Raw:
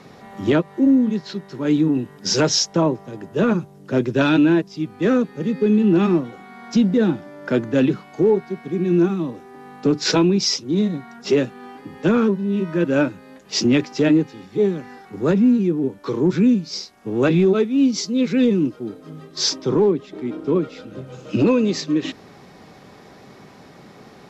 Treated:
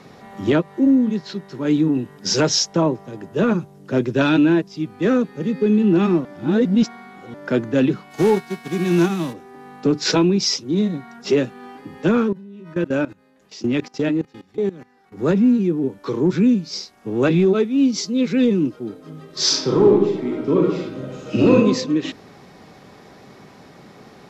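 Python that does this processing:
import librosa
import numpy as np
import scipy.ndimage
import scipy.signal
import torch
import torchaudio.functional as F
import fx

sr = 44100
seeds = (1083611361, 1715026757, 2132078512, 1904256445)

y = fx.envelope_flatten(x, sr, power=0.6, at=(8.1, 9.32), fade=0.02)
y = fx.level_steps(y, sr, step_db=19, at=(12.22, 15.19))
y = fx.reverb_throw(y, sr, start_s=19.24, length_s=2.31, rt60_s=0.82, drr_db=-2.0)
y = fx.edit(y, sr, fx.reverse_span(start_s=6.25, length_s=1.09), tone=tone)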